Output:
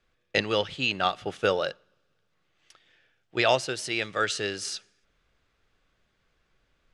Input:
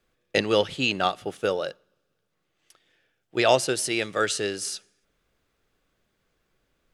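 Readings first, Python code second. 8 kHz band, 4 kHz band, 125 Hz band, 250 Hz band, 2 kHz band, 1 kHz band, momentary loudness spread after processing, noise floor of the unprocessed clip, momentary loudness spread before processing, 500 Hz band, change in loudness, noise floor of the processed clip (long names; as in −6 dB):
−6.0 dB, −1.0 dB, −2.0 dB, −4.5 dB, 0.0 dB, −1.5 dB, 10 LU, −76 dBFS, 11 LU, −3.5 dB, −2.5 dB, −73 dBFS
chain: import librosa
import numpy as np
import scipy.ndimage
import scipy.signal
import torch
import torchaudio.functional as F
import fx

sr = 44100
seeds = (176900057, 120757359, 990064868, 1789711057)

y = fx.peak_eq(x, sr, hz=320.0, db=-6.5, octaves=2.7)
y = fx.rider(y, sr, range_db=10, speed_s=0.5)
y = fx.air_absorb(y, sr, metres=81.0)
y = y * 10.0 ** (1.5 / 20.0)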